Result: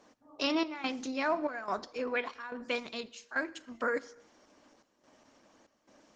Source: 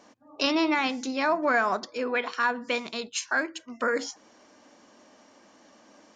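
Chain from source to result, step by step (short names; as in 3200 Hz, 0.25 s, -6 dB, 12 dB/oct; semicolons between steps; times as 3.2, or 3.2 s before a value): step gate "xxxxxx.." 143 bpm -12 dB; on a send at -17.5 dB: reverb, pre-delay 3 ms; on the sum: gain -5 dB; Opus 16 kbps 48000 Hz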